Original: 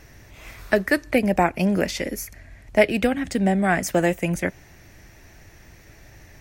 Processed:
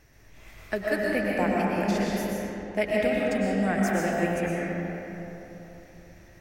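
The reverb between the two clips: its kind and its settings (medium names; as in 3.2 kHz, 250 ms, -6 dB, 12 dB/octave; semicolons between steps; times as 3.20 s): algorithmic reverb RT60 3.5 s, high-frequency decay 0.5×, pre-delay 80 ms, DRR -4.5 dB; trim -10.5 dB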